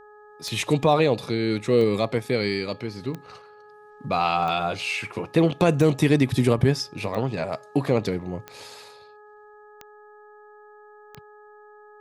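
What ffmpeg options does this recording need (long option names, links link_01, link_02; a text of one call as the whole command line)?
ffmpeg -i in.wav -af "adeclick=threshold=4,bandreject=frequency=420:width_type=h:width=4,bandreject=frequency=840:width_type=h:width=4,bandreject=frequency=1260:width_type=h:width=4,bandreject=frequency=1680:width_type=h:width=4" out.wav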